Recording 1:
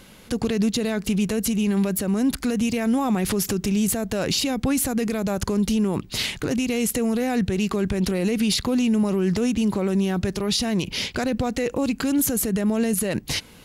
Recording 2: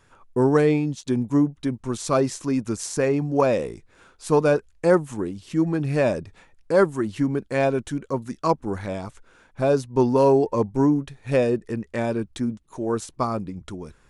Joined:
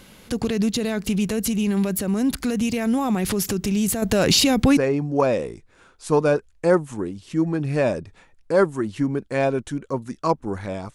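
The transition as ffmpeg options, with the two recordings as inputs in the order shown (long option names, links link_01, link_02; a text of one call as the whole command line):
ffmpeg -i cue0.wav -i cue1.wav -filter_complex "[0:a]asettb=1/sr,asplit=3[link_01][link_02][link_03];[link_01]atrim=end=4.024[link_04];[link_02]atrim=start=4.02:end=4.77,asetpts=PTS-STARTPTS,afade=type=in:duration=0.004:curve=qsin,afade=type=out:start_time=0.746:duration=0.004:curve=qsin,acontrast=63[link_05];[link_03]atrim=start=4.766[link_06];[link_04][link_05]acrossfade=duration=0.004:curve1=hsin:curve2=qsin[link_07];[link_07][link_06]acrossfade=duration=0.004:curve1=qsin:curve2=hsin,apad=whole_dur=10.94,atrim=end=10.94,atrim=end=4.772[link_08];[1:a]atrim=start=2.968:end=9.14[link_09];[link_08][link_09]acrossfade=duration=0.004:curve1=hsin:curve2=hsin" out.wav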